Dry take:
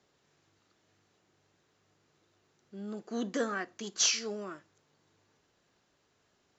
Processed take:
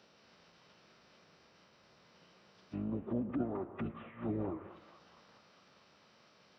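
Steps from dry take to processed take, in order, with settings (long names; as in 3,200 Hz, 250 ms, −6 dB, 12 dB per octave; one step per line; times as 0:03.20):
sub-octave generator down 1 octave, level −2 dB
downward compressor 4 to 1, threshold −39 dBFS, peak gain reduction 13.5 dB
high-pass filter 270 Hz 12 dB per octave
high-shelf EQ 4,000 Hz +2 dB
treble cut that deepens with the level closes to 770 Hz, closed at −42 dBFS
formants moved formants −4 semitones
feedback echo with a band-pass in the loop 219 ms, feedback 79%, band-pass 1,600 Hz, level −9.5 dB
phase-vocoder pitch shift with formants kept −11.5 semitones
on a send at −15 dB: convolution reverb RT60 0.75 s, pre-delay 98 ms
on the sum: level +10 dB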